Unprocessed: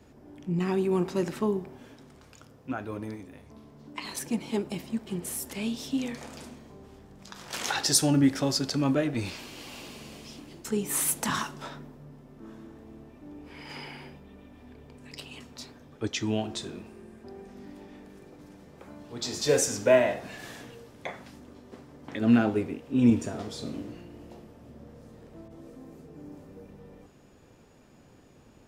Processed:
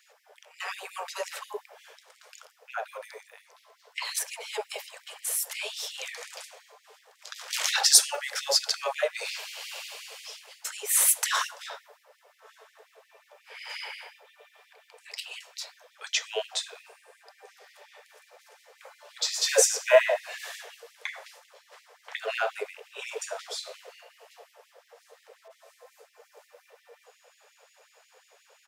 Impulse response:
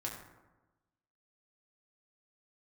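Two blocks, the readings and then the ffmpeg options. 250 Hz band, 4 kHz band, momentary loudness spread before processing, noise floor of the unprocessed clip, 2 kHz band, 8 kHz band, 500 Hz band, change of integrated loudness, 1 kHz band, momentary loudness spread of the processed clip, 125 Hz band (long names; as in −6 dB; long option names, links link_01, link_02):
below −35 dB, +6.0 dB, 24 LU, −56 dBFS, +4.5 dB, +6.0 dB, −1.0 dB, +0.5 dB, +1.0 dB, 21 LU, below −40 dB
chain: -filter_complex "[0:a]acrossover=split=1000[link_01][link_02];[link_01]adelay=40[link_03];[link_03][link_02]amix=inputs=2:normalize=0,afftfilt=real='re*gte(b*sr/1024,410*pow(1900/410,0.5+0.5*sin(2*PI*5.6*pts/sr)))':imag='im*gte(b*sr/1024,410*pow(1900/410,0.5+0.5*sin(2*PI*5.6*pts/sr)))':win_size=1024:overlap=0.75,volume=6dB"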